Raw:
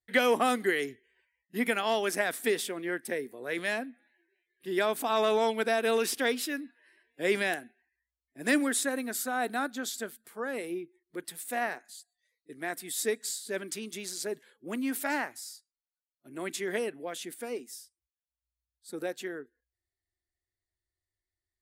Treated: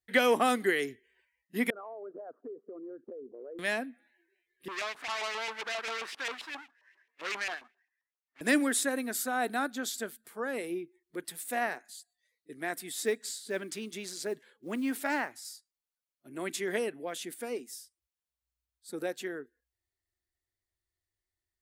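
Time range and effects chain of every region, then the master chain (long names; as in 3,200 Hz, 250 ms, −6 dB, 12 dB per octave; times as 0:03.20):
0:01.70–0:03.59: spectral envelope exaggerated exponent 2 + Butterworth low-pass 1,300 Hz 72 dB per octave + downward compressor, threshold −41 dBFS
0:04.68–0:08.41: each half-wave held at its own peak + auto-filter band-pass saw up 7.5 Hz 880–2,900 Hz + saturating transformer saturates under 3,500 Hz
0:12.89–0:15.45: high-shelf EQ 7,300 Hz −8 dB + floating-point word with a short mantissa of 4 bits
whole clip: no processing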